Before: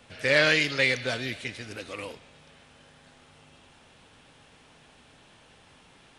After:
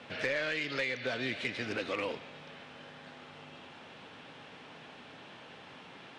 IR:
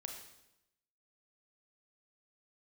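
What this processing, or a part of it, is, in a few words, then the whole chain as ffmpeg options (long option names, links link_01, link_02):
AM radio: -af "highpass=160,lowpass=3700,acompressor=threshold=-35dB:ratio=10,asoftclip=type=tanh:threshold=-29.5dB,volume=6.5dB"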